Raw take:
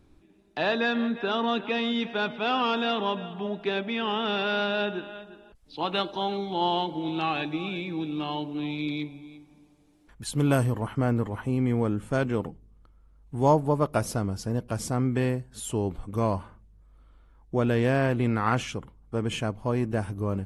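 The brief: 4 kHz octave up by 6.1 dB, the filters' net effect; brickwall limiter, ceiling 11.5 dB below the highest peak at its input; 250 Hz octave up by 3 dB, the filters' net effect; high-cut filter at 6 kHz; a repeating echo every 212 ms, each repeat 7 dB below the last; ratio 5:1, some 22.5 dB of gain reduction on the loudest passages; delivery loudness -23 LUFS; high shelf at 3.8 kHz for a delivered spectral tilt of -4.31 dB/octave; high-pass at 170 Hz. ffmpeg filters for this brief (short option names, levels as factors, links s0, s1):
-af "highpass=170,lowpass=6000,equalizer=f=250:t=o:g=4.5,highshelf=f=3800:g=8.5,equalizer=f=4000:t=o:g=3.5,acompressor=threshold=0.00891:ratio=5,alimiter=level_in=4.47:limit=0.0631:level=0:latency=1,volume=0.224,aecho=1:1:212|424|636|848|1060:0.447|0.201|0.0905|0.0407|0.0183,volume=13.3"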